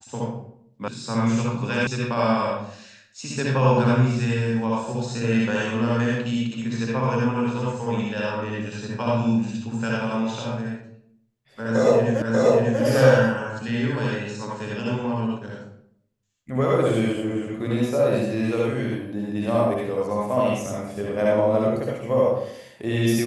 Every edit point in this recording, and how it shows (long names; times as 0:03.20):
0:00.88: cut off before it has died away
0:01.87: cut off before it has died away
0:12.22: the same again, the last 0.59 s